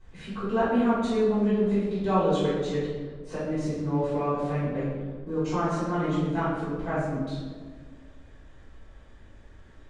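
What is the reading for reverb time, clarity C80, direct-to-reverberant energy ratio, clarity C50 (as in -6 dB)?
1.6 s, 2.0 dB, -14.5 dB, -1.0 dB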